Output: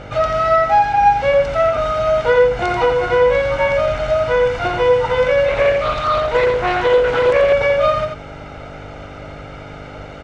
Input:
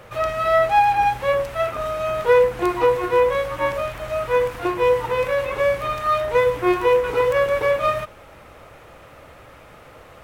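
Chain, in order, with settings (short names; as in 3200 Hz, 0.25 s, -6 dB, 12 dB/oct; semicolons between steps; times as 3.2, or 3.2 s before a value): LPF 6400 Hz 24 dB/oct; comb 1.4 ms, depth 68%; compressor 2:1, threshold -22 dBFS, peak gain reduction 8 dB; buzz 50 Hz, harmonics 9, -44 dBFS -3 dB/oct; echo 87 ms -5.5 dB; 5.48–7.53 Doppler distortion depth 0.26 ms; gain +6.5 dB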